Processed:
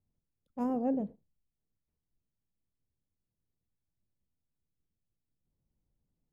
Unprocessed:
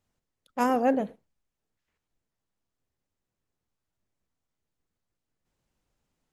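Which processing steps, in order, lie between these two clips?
EQ curve 160 Hz 0 dB, 1000 Hz -15 dB, 1500 Hz -24 dB

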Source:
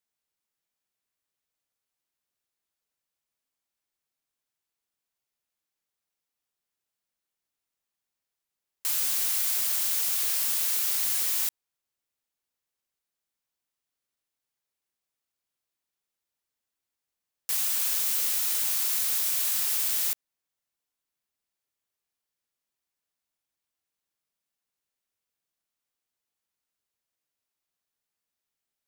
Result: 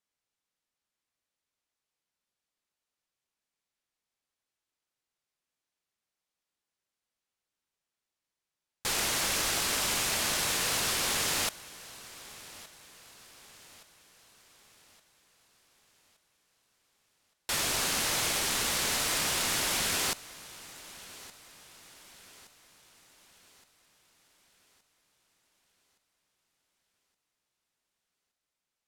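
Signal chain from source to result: thinning echo 1.169 s, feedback 48%, level -19 dB; decimation joined by straight lines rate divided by 2×; gain -2 dB

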